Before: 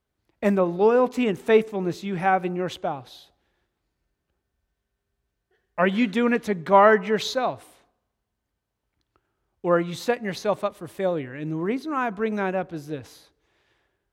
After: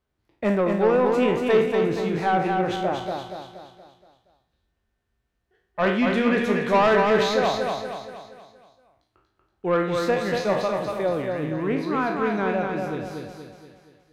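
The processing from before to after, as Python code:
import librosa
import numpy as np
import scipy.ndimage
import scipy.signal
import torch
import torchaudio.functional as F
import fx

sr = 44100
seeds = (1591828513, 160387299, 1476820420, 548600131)

y = fx.spec_trails(x, sr, decay_s=0.46)
y = fx.high_shelf(y, sr, hz=6600.0, db=-9.0)
y = 10.0 ** (-13.5 / 20.0) * np.tanh(y / 10.0 ** (-13.5 / 20.0))
y = fx.echo_feedback(y, sr, ms=236, feedback_pct=47, wet_db=-4.0)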